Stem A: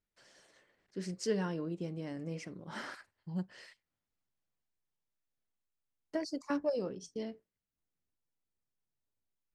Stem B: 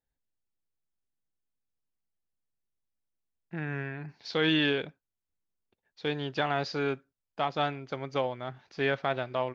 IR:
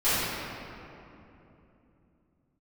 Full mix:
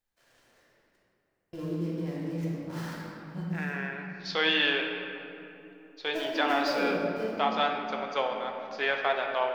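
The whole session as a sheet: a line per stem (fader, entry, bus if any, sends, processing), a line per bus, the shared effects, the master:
-5.5 dB, 0.00 s, muted 0.96–1.53 s, send -6.5 dB, dead-time distortion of 0.14 ms
+2.0 dB, 0.00 s, send -18 dB, high-pass 600 Hz 12 dB/octave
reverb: on, RT60 3.0 s, pre-delay 3 ms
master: none

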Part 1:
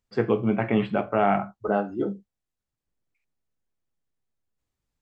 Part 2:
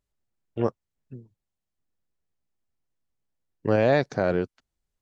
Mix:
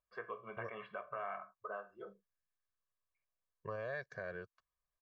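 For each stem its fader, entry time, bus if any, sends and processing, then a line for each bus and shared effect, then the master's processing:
-5.5 dB, 0.00 s, no send, band-pass filter 1.3 kHz, Q 2.3
-18.5 dB, 0.00 s, no send, sweeping bell 0.6 Hz 800–1700 Hz +15 dB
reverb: none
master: comb 1.8 ms, depth 96%; compression 2:1, threshold -46 dBFS, peak gain reduction 10.5 dB

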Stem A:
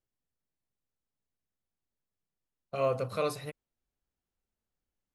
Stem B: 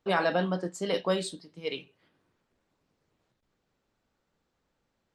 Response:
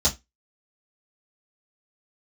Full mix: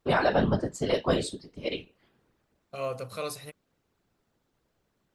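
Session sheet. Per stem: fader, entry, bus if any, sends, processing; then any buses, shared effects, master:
-4.5 dB, 0.00 s, no send, treble shelf 3.2 kHz +10 dB
+1.0 dB, 0.00 s, no send, bass shelf 420 Hz +3.5 dB; whisper effect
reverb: none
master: none

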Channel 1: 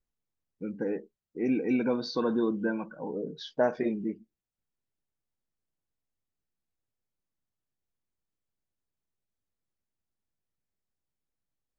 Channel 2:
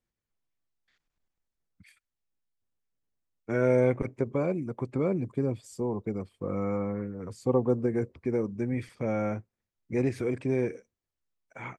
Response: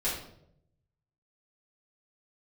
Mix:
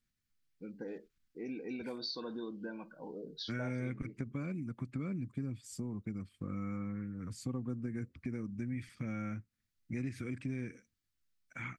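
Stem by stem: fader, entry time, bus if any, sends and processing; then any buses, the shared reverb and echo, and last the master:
-5.0 dB, 0.00 s, no send, flange 0.19 Hz, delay 0.6 ms, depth 2.9 ms, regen +89%; peaking EQ 4.5 kHz +15 dB 0.9 oct
+2.5 dB, 0.00 s, no send, high-order bell 610 Hz -15 dB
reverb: none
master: compression 2.5:1, threshold -40 dBFS, peak gain reduction 12.5 dB

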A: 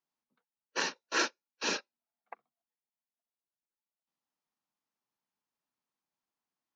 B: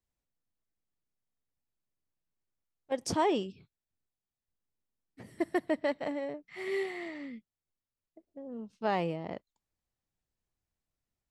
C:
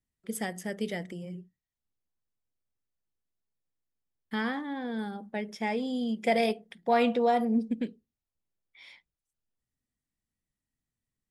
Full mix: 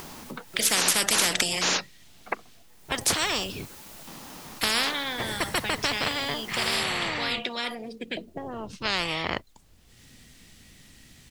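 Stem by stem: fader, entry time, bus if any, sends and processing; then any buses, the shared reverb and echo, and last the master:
+0.5 dB, 0.00 s, no send, upward compressor, threshold -45 dBFS
+2.5 dB, 0.00 s, no send, none
-0.5 dB, 0.30 s, no send, frequency weighting D; level rider gain up to 10.5 dB; auto duck -24 dB, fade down 0.35 s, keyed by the second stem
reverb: none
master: bass shelf 390 Hz +9 dB; spectrum-flattening compressor 10:1

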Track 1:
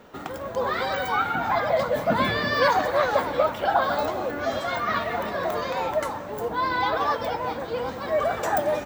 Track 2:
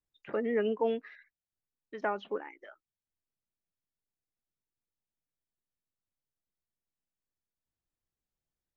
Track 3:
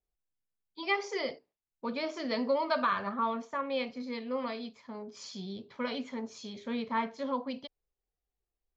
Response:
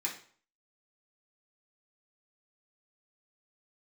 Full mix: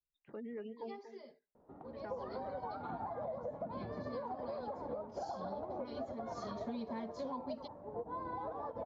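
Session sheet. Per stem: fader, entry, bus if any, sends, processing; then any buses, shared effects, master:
-2.5 dB, 1.55 s, no send, no echo send, low-pass 1.2 kHz 12 dB/octave; peak limiter -21 dBFS, peak gain reduction 10.5 dB; upward expansion 2.5:1, over -34 dBFS
-7.5 dB, 0.00 s, no send, echo send -12.5 dB, reverb removal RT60 1 s; peaking EQ 610 Hz -9.5 dB 1.5 oct
3.66 s -20.5 dB -> 3.96 s -10 dB -> 6.25 s -10 dB -> 6.84 s 0 dB, 0.00 s, no send, no echo send, comb 4.9 ms, depth 76%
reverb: none
echo: delay 237 ms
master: level-controlled noise filter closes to 2.8 kHz, open at -29.5 dBFS; high-order bell 2 kHz -10 dB; compression 10:1, threshold -38 dBFS, peak gain reduction 12 dB

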